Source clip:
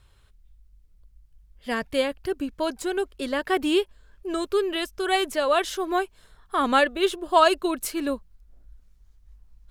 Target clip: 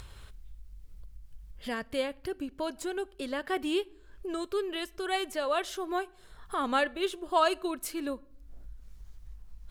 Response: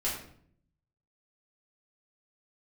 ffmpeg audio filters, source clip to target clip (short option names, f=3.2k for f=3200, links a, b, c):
-filter_complex "[0:a]acompressor=mode=upward:threshold=-24dB:ratio=2.5,asplit=2[a][b];[1:a]atrim=start_sample=2205[c];[b][c]afir=irnorm=-1:irlink=0,volume=-26dB[d];[a][d]amix=inputs=2:normalize=0,volume=-8dB"